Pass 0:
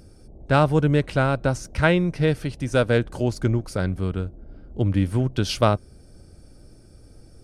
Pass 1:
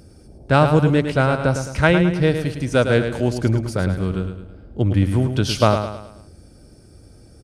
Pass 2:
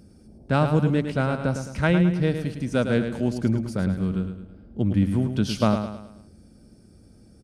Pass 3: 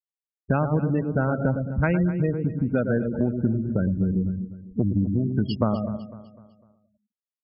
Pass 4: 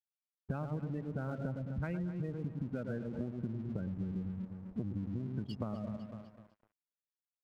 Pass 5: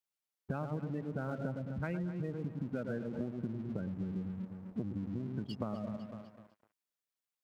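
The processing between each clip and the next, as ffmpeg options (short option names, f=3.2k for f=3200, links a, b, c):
-filter_complex "[0:a]highpass=45,asplit=2[a][b];[b]aecho=0:1:107|214|321|428|535:0.398|0.171|0.0736|0.0317|0.0136[c];[a][c]amix=inputs=2:normalize=0,volume=3dB"
-af "equalizer=f=210:t=o:w=0.61:g=11,volume=-8dB"
-af "afftfilt=real='re*gte(hypot(re,im),0.0708)':imag='im*gte(hypot(re,im),0.0708)':win_size=1024:overlap=0.75,acompressor=threshold=-29dB:ratio=5,aecho=1:1:251|502|753|1004:0.178|0.0711|0.0285|0.0114,volume=8.5dB"
-af "equalizer=f=140:t=o:w=1.6:g=3.5,acompressor=threshold=-31dB:ratio=4,aeval=exprs='sgn(val(0))*max(abs(val(0))-0.00282,0)':c=same,volume=-5.5dB"
-af "highpass=f=160:p=1,volume=2.5dB"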